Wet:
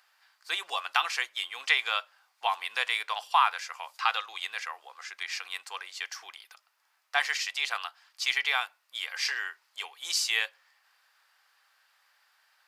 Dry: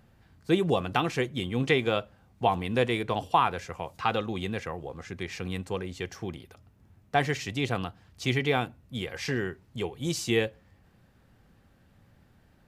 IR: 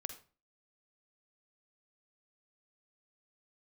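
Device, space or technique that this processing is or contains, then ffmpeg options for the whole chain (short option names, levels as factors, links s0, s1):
headphones lying on a table: -af "highpass=f=1000:w=0.5412,highpass=f=1000:w=1.3066,equalizer=f=4800:t=o:w=0.35:g=6.5,volume=1.58"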